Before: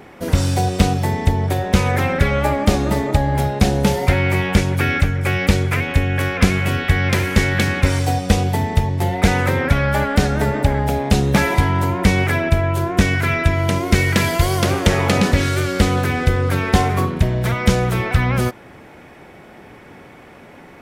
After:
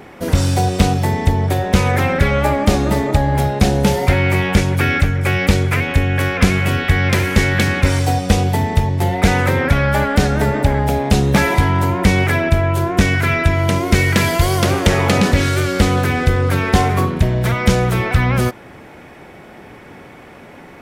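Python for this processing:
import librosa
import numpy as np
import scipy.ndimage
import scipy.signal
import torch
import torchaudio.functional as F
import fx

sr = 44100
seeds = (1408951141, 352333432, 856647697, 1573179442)

p1 = 10.0 ** (-12.5 / 20.0) * np.tanh(x / 10.0 ** (-12.5 / 20.0))
p2 = x + (p1 * librosa.db_to_amplitude(-5.0))
y = p2 * librosa.db_to_amplitude(-1.0)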